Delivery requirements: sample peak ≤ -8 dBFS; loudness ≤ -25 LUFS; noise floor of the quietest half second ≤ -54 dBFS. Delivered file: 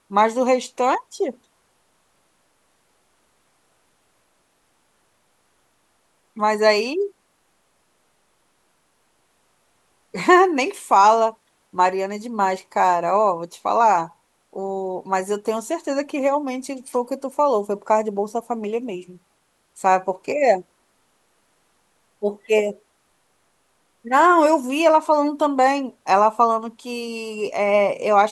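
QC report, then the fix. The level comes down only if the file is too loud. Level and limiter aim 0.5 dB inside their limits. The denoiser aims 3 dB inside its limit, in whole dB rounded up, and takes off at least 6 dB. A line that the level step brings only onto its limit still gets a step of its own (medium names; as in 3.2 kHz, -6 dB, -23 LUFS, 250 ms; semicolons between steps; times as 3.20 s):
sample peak -4.0 dBFS: fail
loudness -20.0 LUFS: fail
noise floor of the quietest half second -66 dBFS: pass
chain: trim -5.5 dB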